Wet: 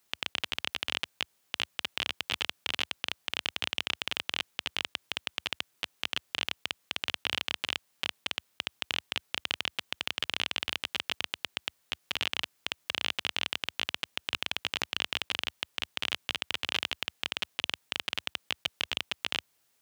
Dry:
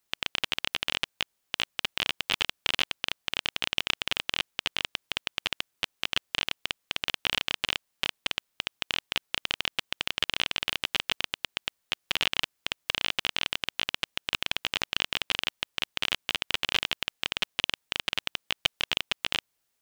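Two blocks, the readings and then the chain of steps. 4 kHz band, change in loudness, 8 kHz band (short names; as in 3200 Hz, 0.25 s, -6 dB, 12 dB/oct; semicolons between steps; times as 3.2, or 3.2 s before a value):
-3.5 dB, -3.5 dB, -3.5 dB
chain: HPF 77 Hz 24 dB/oct; in parallel at +1.5 dB: negative-ratio compressor -38 dBFS, ratio -1; on the sum: gain -6.5 dB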